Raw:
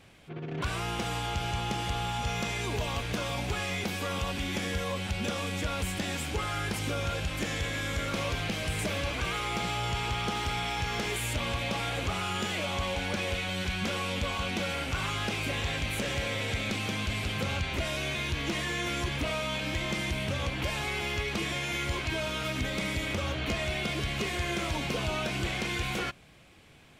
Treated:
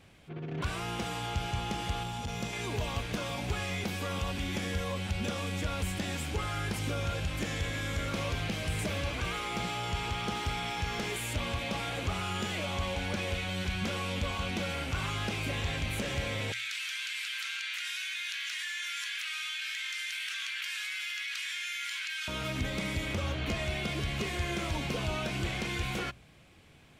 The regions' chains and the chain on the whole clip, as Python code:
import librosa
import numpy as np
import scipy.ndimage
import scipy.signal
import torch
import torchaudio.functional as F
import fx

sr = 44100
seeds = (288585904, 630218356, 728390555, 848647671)

y = fx.chain(x, sr, fx.peak_eq(hz=1600.0, db=-4.5, octaves=2.1),
    fx.transformer_sat(knee_hz=140.0), at=(2.03, 2.53))
y = fx.chain(y, sr, fx.ellip_highpass(hz=1500.0, order=4, stop_db=80),
    fx.env_flatten(amount_pct=100), at=(16.52, 22.28))
y = fx.peak_eq(y, sr, hz=73.0, db=4.0, octaves=2.9)
y = fx.hum_notches(y, sr, base_hz=60, count=2)
y = y * 10.0 ** (-3.0 / 20.0)